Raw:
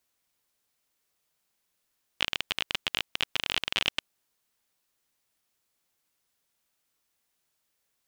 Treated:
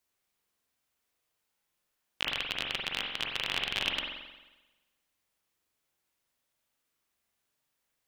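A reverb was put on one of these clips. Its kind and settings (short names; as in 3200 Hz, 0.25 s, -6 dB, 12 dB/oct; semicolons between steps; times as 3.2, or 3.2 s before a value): spring tank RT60 1.1 s, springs 44 ms, chirp 55 ms, DRR -0.5 dB; gain -4.5 dB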